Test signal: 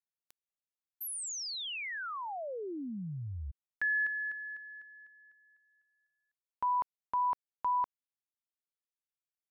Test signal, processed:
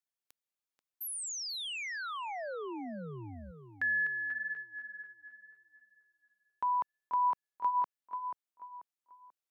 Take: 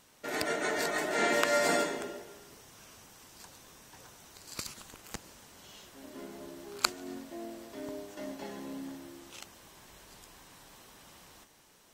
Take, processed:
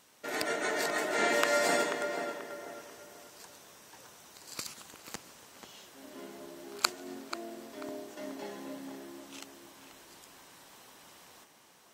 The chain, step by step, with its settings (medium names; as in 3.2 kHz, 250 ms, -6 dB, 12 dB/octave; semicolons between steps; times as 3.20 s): high-pass 220 Hz 6 dB/octave; tape echo 487 ms, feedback 37%, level -7 dB, low-pass 2.3 kHz